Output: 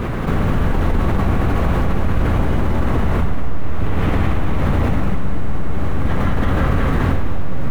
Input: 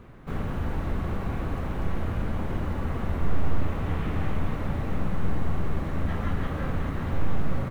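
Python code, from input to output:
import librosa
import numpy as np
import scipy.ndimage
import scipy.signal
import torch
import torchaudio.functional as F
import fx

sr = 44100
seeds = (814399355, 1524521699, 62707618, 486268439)

y = fx.vibrato(x, sr, rate_hz=7.3, depth_cents=5.4)
y = fx.echo_multitap(y, sr, ms=(200, 370), db=(-3.5, -9.0))
y = fx.env_flatten(y, sr, amount_pct=70)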